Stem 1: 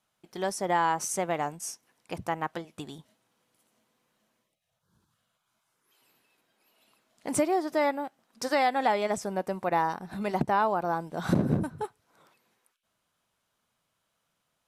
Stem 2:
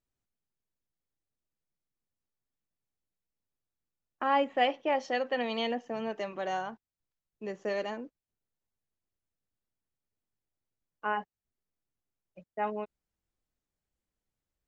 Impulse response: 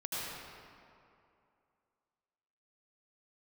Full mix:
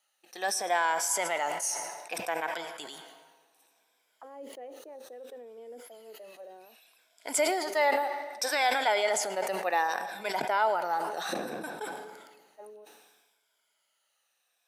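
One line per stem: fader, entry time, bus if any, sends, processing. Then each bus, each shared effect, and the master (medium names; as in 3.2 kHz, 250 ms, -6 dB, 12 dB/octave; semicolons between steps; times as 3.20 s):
+2.5 dB, 0.00 s, send -18 dB, drifting ripple filter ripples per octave 1.7, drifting -0.64 Hz, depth 10 dB; high-pass 780 Hz 12 dB/octave; peaking EQ 1.1 kHz -9.5 dB 0.49 oct
-9.0 dB, 0.00 s, no send, peaking EQ 2 kHz +4 dB 1.2 oct; auto-wah 430–1200 Hz, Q 4.1, down, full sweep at -28.5 dBFS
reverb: on, RT60 2.6 s, pre-delay 72 ms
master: high-pass 130 Hz; decay stretcher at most 43 dB/s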